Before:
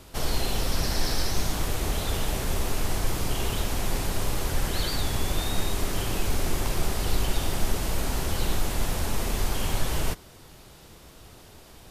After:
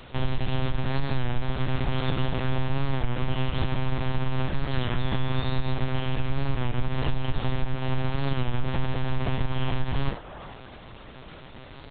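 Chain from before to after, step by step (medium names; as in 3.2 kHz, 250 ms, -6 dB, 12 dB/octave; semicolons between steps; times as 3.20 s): one-bit delta coder 64 kbps, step -39 dBFS; bass shelf 86 Hz +5.5 dB; hum notches 50/100 Hz; compression, threshold -19 dBFS, peak gain reduction 8.5 dB; feedback echo behind a band-pass 386 ms, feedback 35%, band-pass 830 Hz, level -3.5 dB; monotone LPC vocoder at 8 kHz 130 Hz; warped record 33 1/3 rpm, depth 100 cents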